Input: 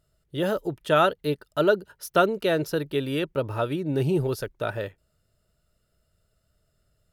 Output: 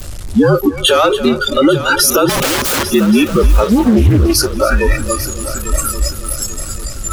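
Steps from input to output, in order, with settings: delta modulation 64 kbps, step -21 dBFS; spectral noise reduction 29 dB; tone controls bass +12 dB, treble +5 dB; 0.86–1.29 sample leveller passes 1; compressor 5:1, threshold -29 dBFS, peak gain reduction 15 dB; 2.29–2.86 wrapped overs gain 33.5 dB; frequency shift -58 Hz; multi-head echo 0.281 s, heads first and third, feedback 59%, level -16 dB; maximiser +23 dB; 3.6–4.58 Doppler distortion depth 0.42 ms; gain -1 dB

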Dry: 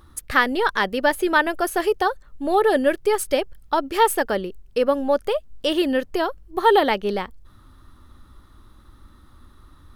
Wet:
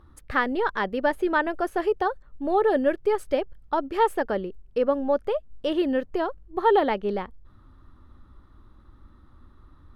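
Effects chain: LPF 1300 Hz 6 dB/oct; gain -2.5 dB

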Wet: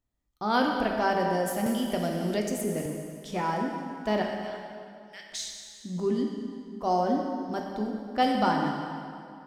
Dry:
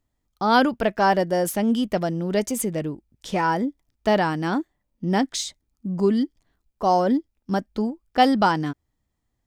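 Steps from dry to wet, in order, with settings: 4.22–5.28 ladder high-pass 1700 Hz, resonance 35%; plate-style reverb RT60 2.4 s, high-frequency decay 0.8×, DRR 0.5 dB; 1.66–2.86 three-band squash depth 70%; gain -8.5 dB

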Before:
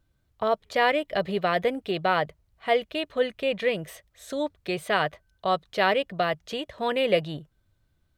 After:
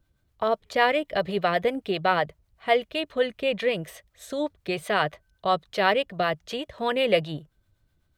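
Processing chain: harmonic tremolo 7.9 Hz, depth 50%, crossover 500 Hz; gain +3 dB

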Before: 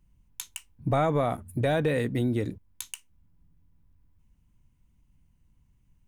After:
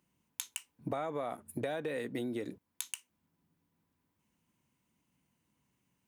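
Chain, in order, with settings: HPF 280 Hz 12 dB/oct; compressor 8:1, threshold -35 dBFS, peak gain reduction 13.5 dB; gain +1.5 dB

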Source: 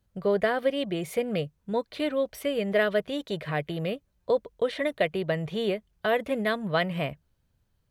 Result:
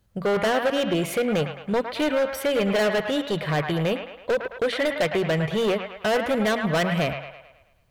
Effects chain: de-hum 46.82 Hz, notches 6; overloaded stage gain 26.5 dB; band-limited delay 0.108 s, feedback 49%, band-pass 1400 Hz, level -4 dB; gain +7.5 dB

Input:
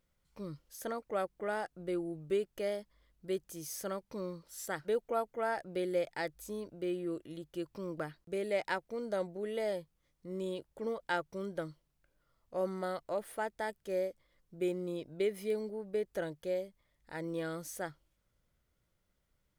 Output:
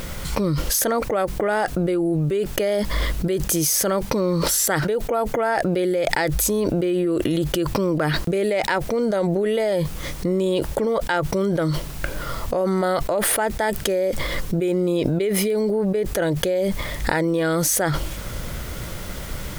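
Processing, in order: fast leveller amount 100%; gain +7.5 dB

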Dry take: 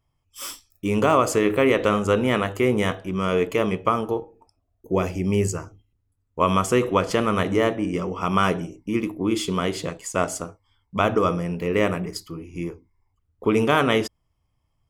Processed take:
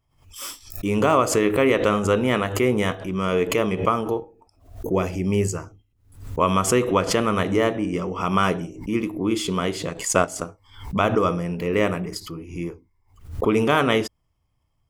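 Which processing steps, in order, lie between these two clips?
9.9–10.45 transient shaper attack +6 dB, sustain -6 dB; backwards sustainer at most 110 dB/s

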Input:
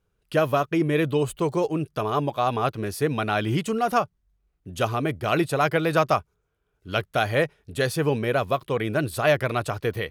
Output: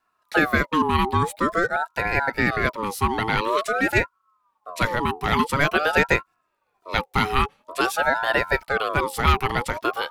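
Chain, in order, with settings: frequency shift +64 Hz; ring modulator with a swept carrier 900 Hz, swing 35%, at 0.48 Hz; gain +4.5 dB

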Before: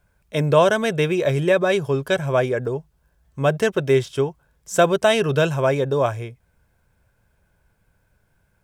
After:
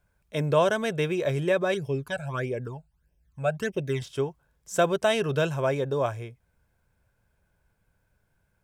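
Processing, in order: 1.74–4.02 phaser stages 12, 1.6 Hz, lowest notch 320–1400 Hz; gain -6.5 dB

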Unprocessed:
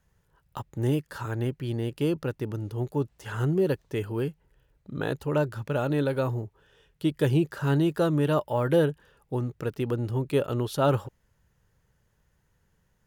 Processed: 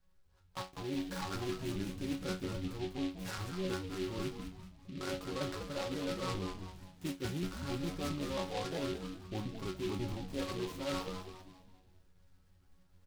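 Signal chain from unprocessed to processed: trilling pitch shifter -2.5 st, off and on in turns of 0.135 s; dynamic EQ 1200 Hz, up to +4 dB, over -42 dBFS, Q 1.3; resonator bank F#3 fifth, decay 0.27 s; reverse; compressor 16:1, threshold -47 dBFS, peak gain reduction 19.5 dB; reverse; low shelf 83 Hz +9 dB; on a send: frequency-shifting echo 0.198 s, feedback 43%, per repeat -92 Hz, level -7 dB; on the sum: AGC gain up to 5 dB; noise-modulated delay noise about 2900 Hz, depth 0.09 ms; gain +7 dB

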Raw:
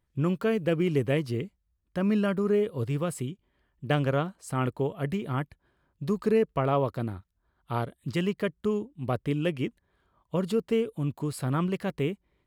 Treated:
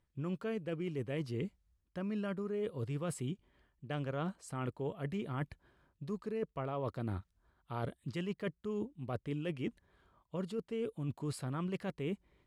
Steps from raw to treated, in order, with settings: reverse; compressor 12:1, threshold -36 dBFS, peak gain reduction 17.5 dB; reverse; LPF 10000 Hz 12 dB/oct; gain +1.5 dB

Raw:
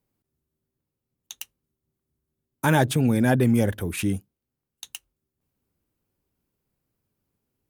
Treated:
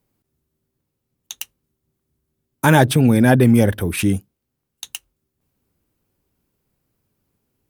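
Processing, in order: 2.8–4 notch 6900 Hz, Q 5.2; gain +7 dB

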